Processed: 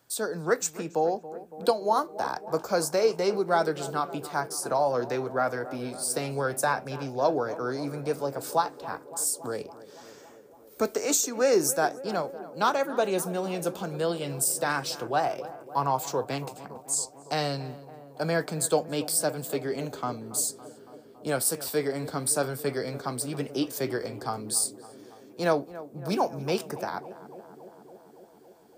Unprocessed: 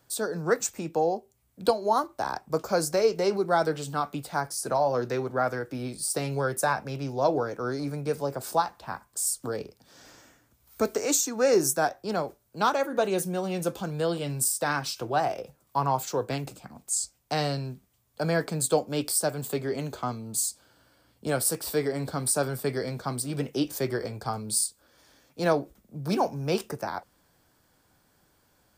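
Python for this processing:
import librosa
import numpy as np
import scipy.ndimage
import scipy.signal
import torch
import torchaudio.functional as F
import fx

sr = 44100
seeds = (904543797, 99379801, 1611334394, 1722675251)

p1 = fx.highpass(x, sr, hz=160.0, slope=6)
y = p1 + fx.echo_tape(p1, sr, ms=280, feedback_pct=87, wet_db=-14.5, lp_hz=1300.0, drive_db=7.0, wow_cents=5, dry=0)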